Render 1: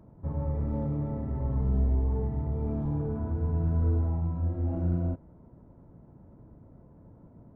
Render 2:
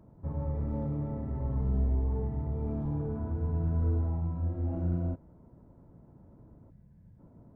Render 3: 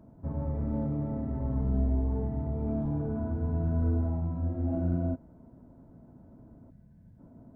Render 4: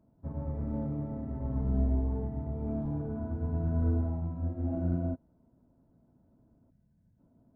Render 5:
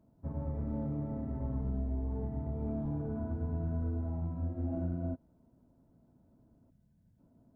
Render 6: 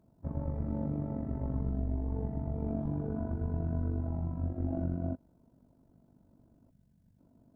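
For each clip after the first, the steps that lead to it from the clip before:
spectral gain 6.71–7.19, 220–1500 Hz -13 dB; gain -2.5 dB
small resonant body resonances 250/660/1500 Hz, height 8 dB
upward expander 1.5:1, over -49 dBFS
compressor 5:1, threshold -31 dBFS, peak gain reduction 8 dB
AM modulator 48 Hz, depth 50%; gain +4.5 dB

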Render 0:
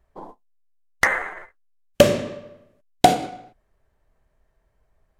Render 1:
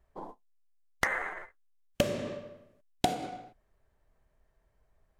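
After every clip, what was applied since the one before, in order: compressor 4:1, threshold -22 dBFS, peak gain reduction 12.5 dB; gain -4 dB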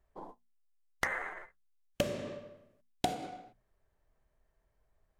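notches 60/120/180/240 Hz; gain -4 dB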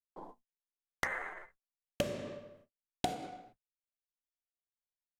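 gate -59 dBFS, range -40 dB; gain -2 dB

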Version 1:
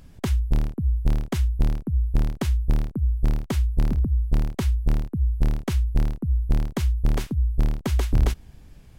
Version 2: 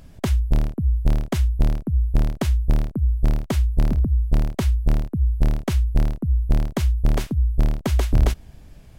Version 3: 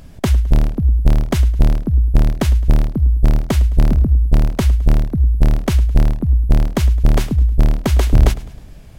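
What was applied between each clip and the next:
bell 630 Hz +6 dB 0.3 oct; gain +2.5 dB
warbling echo 0.105 s, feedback 45%, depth 81 cents, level -18 dB; gain +6 dB

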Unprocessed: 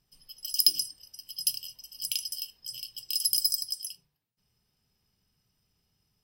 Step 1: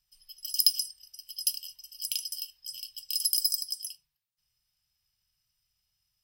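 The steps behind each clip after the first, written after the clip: passive tone stack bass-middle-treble 10-0-10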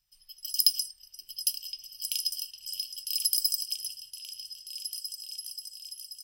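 repeats that get brighter 0.533 s, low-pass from 750 Hz, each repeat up 2 oct, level -3 dB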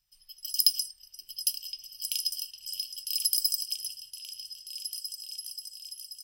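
nothing audible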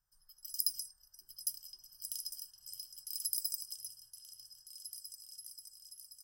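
EQ curve 500 Hz 0 dB, 1600 Hz +5 dB, 2500 Hz -28 dB, 6600 Hz -5 dB; gain -2.5 dB

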